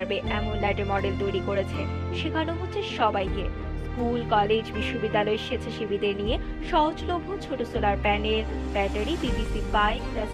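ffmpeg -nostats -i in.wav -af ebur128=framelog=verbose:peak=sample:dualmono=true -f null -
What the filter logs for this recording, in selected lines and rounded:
Integrated loudness:
  I:         -23.9 LUFS
  Threshold: -33.9 LUFS
Loudness range:
  LRA:         1.6 LU
  Threshold: -44.0 LUFS
  LRA low:   -24.9 LUFS
  LRA high:  -23.2 LUFS
Sample peak:
  Peak:       -9.3 dBFS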